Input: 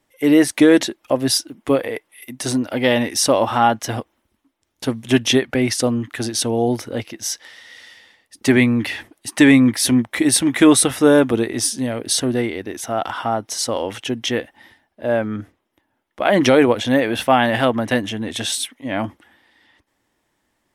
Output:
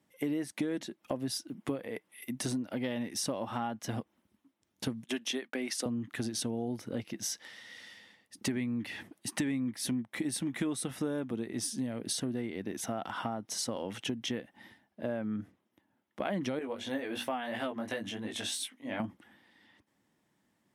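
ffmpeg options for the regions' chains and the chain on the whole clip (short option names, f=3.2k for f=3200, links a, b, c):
-filter_complex "[0:a]asettb=1/sr,asplit=3[a][b][c];[a]atrim=end=5.044[d];[b]atrim=start=5.04:end=5.86,asetpts=PTS-STARTPTS,afade=t=in:d=0.004:c=qsin,afade=t=out:st=0.816:d=0.004:c=qsin,highpass=f=240:w=0.5412,highpass=f=240:w=1.3066,agate=range=-33dB:threshold=-32dB:ratio=3:release=100:detection=peak,lowshelf=f=480:g=-8[e];[c]atrim=start=5.856[f];[d][e]acrossfade=d=0.004:c1=hsin:c2=qsin[g];[g][f]acrossfade=d=0.004:c1=qsin:c2=hsin,asettb=1/sr,asplit=3[h][i][j];[h]atrim=end=16.594[k];[i]atrim=start=16.59:end=19,asetpts=PTS-STARTPTS,afade=t=in:d=0.004:c=qsin,afade=t=out:st=2.406:d=0.004:c=qsin,equalizer=f=150:w=1.2:g=-14,flanger=delay=18:depth=3.2:speed=2.9,bandreject=f=60:t=h:w=6,bandreject=f=120:t=h:w=6,bandreject=f=180:t=h:w=6,bandreject=f=240:t=h:w=6,bandreject=f=300:t=h:w=6,bandreject=f=360:t=h:w=6[l];[j]atrim=start=18.996[m];[k][l]acrossfade=d=0.004:c1=hsin:c2=qsin[n];[n][m]acrossfade=d=0.004:c1=qsin:c2=hsin,highpass=77,equalizer=f=180:w=1.4:g=11.5,acompressor=threshold=-24dB:ratio=6,volume=-8dB"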